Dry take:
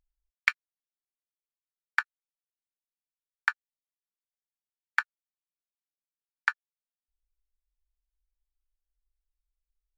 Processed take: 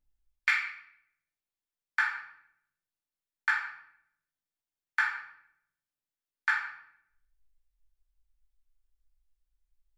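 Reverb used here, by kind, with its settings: shoebox room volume 190 m³, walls mixed, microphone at 2.6 m; gain -7.5 dB

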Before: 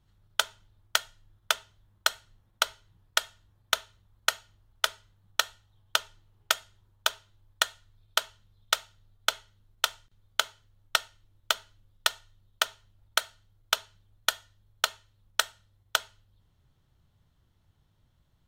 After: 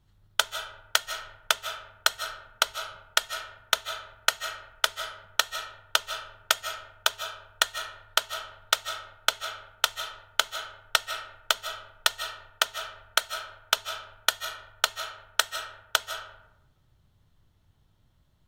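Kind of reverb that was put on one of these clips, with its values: digital reverb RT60 0.91 s, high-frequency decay 0.5×, pre-delay 0.115 s, DRR 8 dB; gain +2 dB

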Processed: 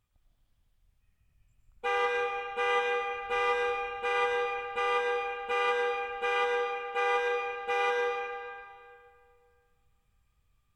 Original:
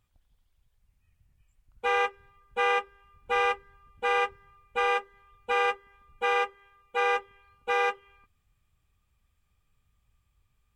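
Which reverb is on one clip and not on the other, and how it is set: digital reverb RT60 2.2 s, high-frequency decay 0.8×, pre-delay 70 ms, DRR -1 dB; gain -4 dB

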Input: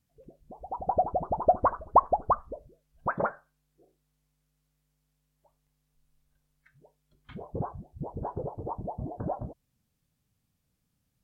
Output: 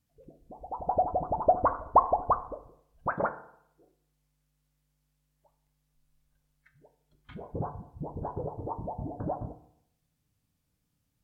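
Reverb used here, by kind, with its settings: FDN reverb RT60 0.72 s, low-frequency decay 0.95×, high-frequency decay 0.6×, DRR 9.5 dB; gain -1 dB

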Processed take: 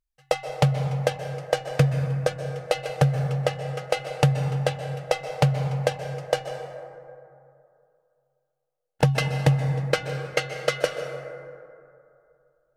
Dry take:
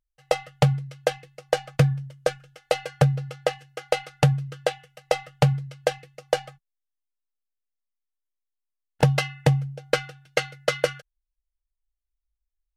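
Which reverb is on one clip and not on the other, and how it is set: plate-style reverb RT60 2.6 s, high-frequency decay 0.35×, pre-delay 0.115 s, DRR 6.5 dB; gain -1 dB

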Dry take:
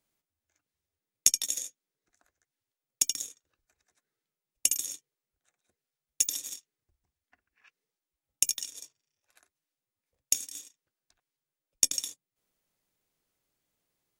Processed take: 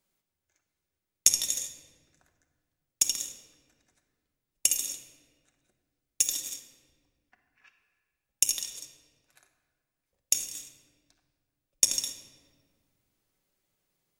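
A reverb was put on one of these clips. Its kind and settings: shoebox room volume 1900 m³, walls mixed, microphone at 1.1 m; gain +1 dB

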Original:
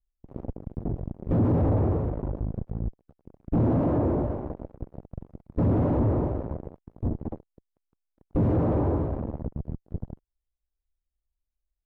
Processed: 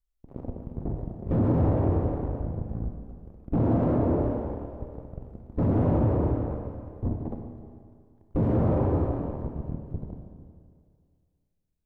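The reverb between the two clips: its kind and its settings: Schroeder reverb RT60 2.1 s, combs from 25 ms, DRR 3 dB; gain -1.5 dB

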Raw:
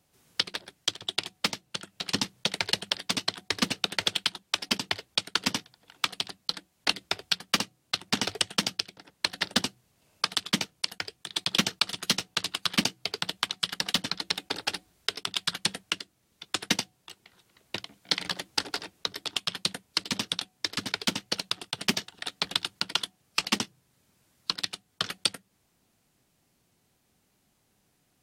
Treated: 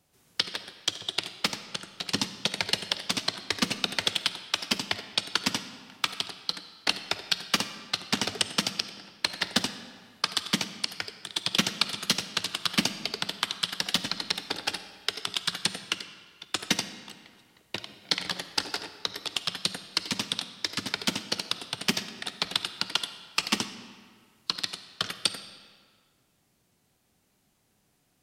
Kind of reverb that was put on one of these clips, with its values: digital reverb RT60 1.8 s, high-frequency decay 0.8×, pre-delay 10 ms, DRR 11 dB

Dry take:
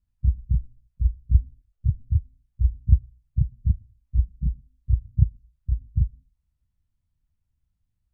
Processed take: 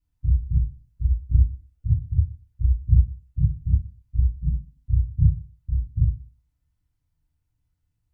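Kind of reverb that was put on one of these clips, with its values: FDN reverb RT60 0.57 s, low-frequency decay 0.7×, high-frequency decay 0.6×, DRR -8 dB; gain -5 dB

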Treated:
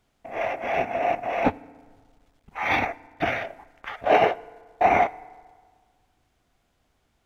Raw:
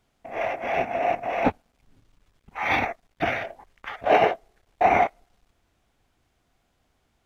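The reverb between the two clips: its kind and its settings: FDN reverb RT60 1.7 s, low-frequency decay 0.95×, high-frequency decay 0.55×, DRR 20 dB

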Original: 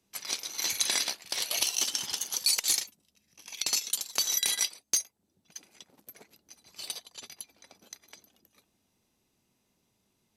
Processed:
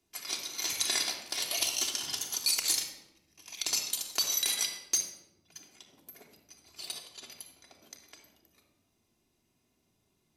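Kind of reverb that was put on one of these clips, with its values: shoebox room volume 3900 m³, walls furnished, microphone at 3.2 m; gain -3.5 dB

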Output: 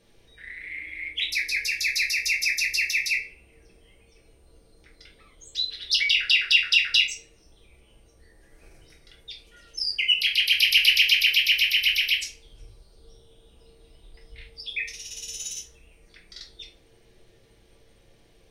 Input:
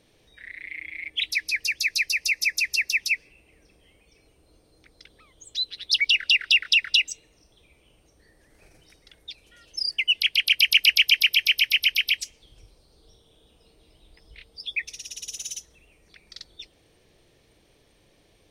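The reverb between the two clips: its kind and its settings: shoebox room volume 32 m³, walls mixed, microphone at 0.69 m; gain -3.5 dB

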